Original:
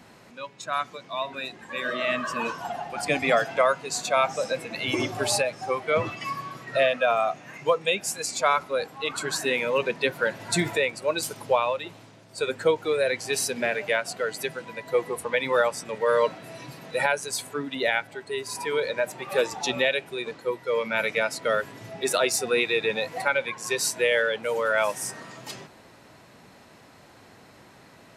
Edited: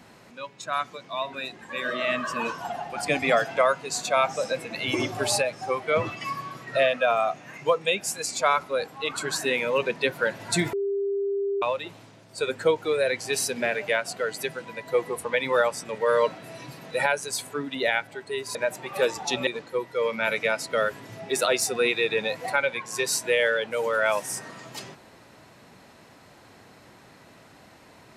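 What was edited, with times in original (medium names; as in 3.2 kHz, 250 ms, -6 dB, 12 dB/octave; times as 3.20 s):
10.73–11.62 s: bleep 398 Hz -23.5 dBFS
18.55–18.91 s: delete
19.83–20.19 s: delete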